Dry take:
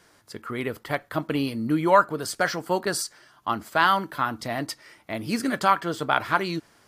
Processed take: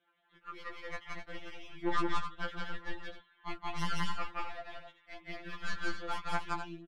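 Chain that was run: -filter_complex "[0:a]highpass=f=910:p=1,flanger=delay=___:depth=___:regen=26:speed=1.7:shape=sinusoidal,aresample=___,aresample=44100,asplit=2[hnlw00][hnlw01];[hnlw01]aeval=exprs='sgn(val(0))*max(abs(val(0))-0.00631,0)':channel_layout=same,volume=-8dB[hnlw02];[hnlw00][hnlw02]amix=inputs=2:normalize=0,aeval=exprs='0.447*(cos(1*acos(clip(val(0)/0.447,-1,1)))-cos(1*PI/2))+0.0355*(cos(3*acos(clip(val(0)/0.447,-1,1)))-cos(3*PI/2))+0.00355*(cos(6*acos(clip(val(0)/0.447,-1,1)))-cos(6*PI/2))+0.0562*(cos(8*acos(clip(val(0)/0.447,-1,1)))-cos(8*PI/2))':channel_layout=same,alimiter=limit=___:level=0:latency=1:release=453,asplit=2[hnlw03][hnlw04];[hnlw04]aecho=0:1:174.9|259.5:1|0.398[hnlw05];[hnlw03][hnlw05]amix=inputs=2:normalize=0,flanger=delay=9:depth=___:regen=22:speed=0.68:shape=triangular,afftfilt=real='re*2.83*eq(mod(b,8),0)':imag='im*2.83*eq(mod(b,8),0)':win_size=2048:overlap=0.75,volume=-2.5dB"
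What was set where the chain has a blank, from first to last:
5.5, 1.3, 8000, -15dB, 3.9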